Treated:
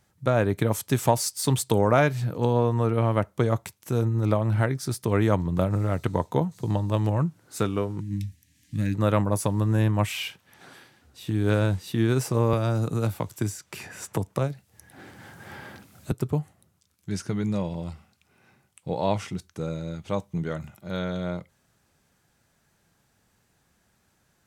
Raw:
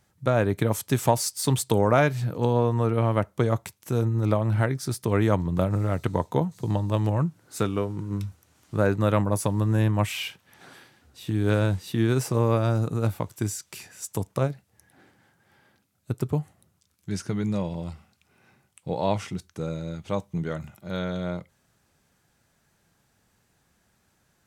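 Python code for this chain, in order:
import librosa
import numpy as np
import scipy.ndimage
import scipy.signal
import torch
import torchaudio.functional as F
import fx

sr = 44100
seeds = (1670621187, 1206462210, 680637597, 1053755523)

y = fx.spec_box(x, sr, start_s=8.0, length_s=0.95, low_hz=310.0, high_hz=1600.0, gain_db=-22)
y = fx.band_squash(y, sr, depth_pct=70, at=(12.53, 16.12))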